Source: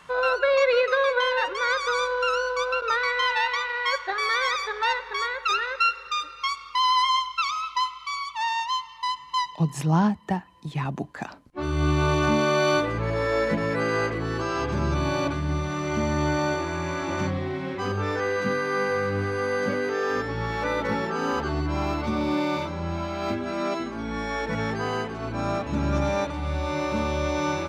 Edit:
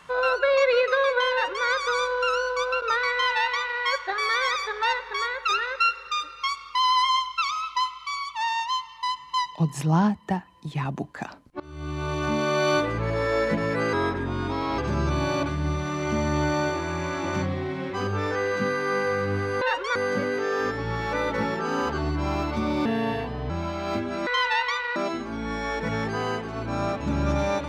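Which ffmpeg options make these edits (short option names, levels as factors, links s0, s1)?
-filter_complex "[0:a]asplit=10[s0][s1][s2][s3][s4][s5][s6][s7][s8][s9];[s0]atrim=end=11.6,asetpts=PTS-STARTPTS,afade=t=out:st=11.596:d=0.004:c=hsin:silence=0.0891251[s10];[s1]atrim=start=11.6:end=13.934,asetpts=PTS-STARTPTS,afade=t=in:d=1.19:silence=0.0891251[s11];[s2]atrim=start=13.93:end=14.63,asetpts=PTS-STARTPTS,asetrate=36162,aresample=44100,atrim=end_sample=37646,asetpts=PTS-STARTPTS[s12];[s3]atrim=start=14.626:end=19.462[s13];[s4]atrim=start=1.318:end=1.662[s14];[s5]atrim=start=19.458:end=22.364[s15];[s6]atrim=start=22.36:end=22.85,asetpts=PTS-STARTPTS,asetrate=33516,aresample=44100[s16];[s7]atrim=start=22.846:end=23.622[s17];[s8]atrim=start=3.118:end=3.812[s18];[s9]atrim=start=23.618[s19];[s10][s11]concat=n=2:v=0:a=1[s20];[s20][s12]acrossfade=d=0.004:c1=hsin:c2=hsin[s21];[s21][s13]acrossfade=d=0.004:c1=hsin:c2=hsin[s22];[s22][s14]acrossfade=d=0.004:c1=hsin:c2=hsin[s23];[s23][s15]acrossfade=d=0.004:c1=hsin:c2=hsin[s24];[s24][s16]acrossfade=d=0.004:c1=hsin:c2=hsin[s25];[s25][s17]acrossfade=d=0.004:c1=hsin:c2=hsin[s26];[s26][s18]acrossfade=d=0.004:c1=hsin:c2=hsin[s27];[s27][s19]acrossfade=d=0.004:c1=hsin:c2=hsin"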